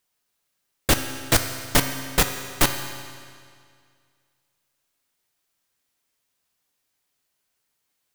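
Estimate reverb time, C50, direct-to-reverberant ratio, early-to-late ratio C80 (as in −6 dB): 2.1 s, 7.5 dB, 6.0 dB, 8.5 dB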